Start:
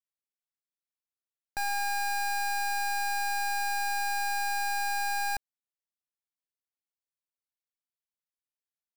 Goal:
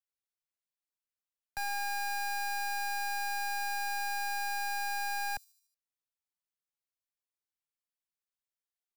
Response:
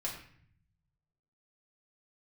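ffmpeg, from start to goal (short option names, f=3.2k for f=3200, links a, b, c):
-filter_complex "[0:a]acrossover=split=150|600|4600[a][b][c][d];[b]aeval=exprs='max(val(0),0)':c=same[e];[d]aecho=1:1:75|150|225|300|375:0.158|0.0872|0.0479|0.0264|0.0145[f];[a][e][c][f]amix=inputs=4:normalize=0,volume=-3.5dB"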